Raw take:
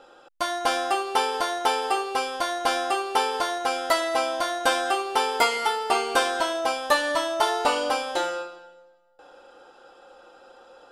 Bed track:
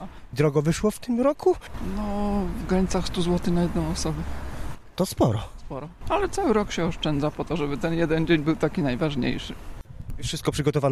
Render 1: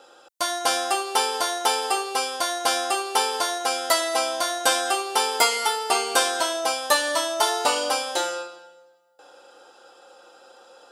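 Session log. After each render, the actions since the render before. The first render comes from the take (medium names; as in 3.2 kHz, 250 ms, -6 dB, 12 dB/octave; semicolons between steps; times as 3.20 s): high-pass 60 Hz; tone controls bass -7 dB, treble +10 dB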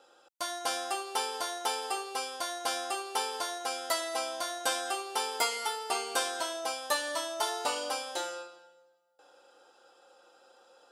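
trim -10 dB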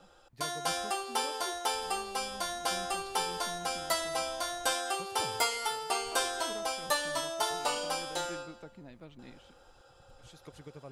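add bed track -26 dB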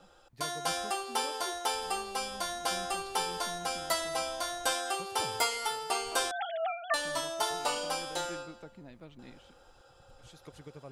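6.31–6.94 s: formants replaced by sine waves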